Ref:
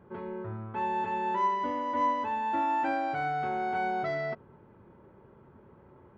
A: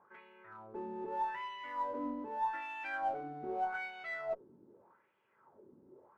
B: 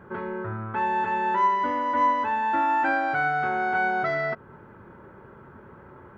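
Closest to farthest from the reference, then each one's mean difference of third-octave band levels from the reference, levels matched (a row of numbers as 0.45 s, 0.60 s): B, A; 2.0 dB, 6.0 dB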